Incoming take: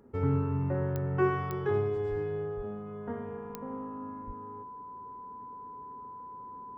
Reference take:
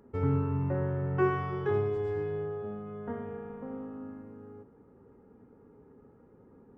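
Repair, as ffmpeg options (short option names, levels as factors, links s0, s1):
-filter_complex "[0:a]adeclick=t=4,bandreject=f=1000:w=30,asplit=3[s0][s1][s2];[s0]afade=t=out:st=2.09:d=0.02[s3];[s1]highpass=f=140:w=0.5412,highpass=f=140:w=1.3066,afade=t=in:st=2.09:d=0.02,afade=t=out:st=2.21:d=0.02[s4];[s2]afade=t=in:st=2.21:d=0.02[s5];[s3][s4][s5]amix=inputs=3:normalize=0,asplit=3[s6][s7][s8];[s6]afade=t=out:st=2.56:d=0.02[s9];[s7]highpass=f=140:w=0.5412,highpass=f=140:w=1.3066,afade=t=in:st=2.56:d=0.02,afade=t=out:st=2.68:d=0.02[s10];[s8]afade=t=in:st=2.68:d=0.02[s11];[s9][s10][s11]amix=inputs=3:normalize=0,asplit=3[s12][s13][s14];[s12]afade=t=out:st=4.26:d=0.02[s15];[s13]highpass=f=140:w=0.5412,highpass=f=140:w=1.3066,afade=t=in:st=4.26:d=0.02,afade=t=out:st=4.38:d=0.02[s16];[s14]afade=t=in:st=4.38:d=0.02[s17];[s15][s16][s17]amix=inputs=3:normalize=0"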